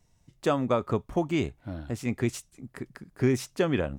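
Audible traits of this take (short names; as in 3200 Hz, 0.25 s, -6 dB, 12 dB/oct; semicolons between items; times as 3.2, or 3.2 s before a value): noise floor -66 dBFS; spectral tilt -6.5 dB/oct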